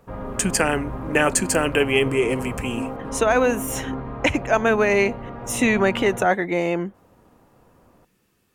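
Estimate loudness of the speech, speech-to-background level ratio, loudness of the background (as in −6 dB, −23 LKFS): −21.5 LKFS, 10.5 dB, −32.0 LKFS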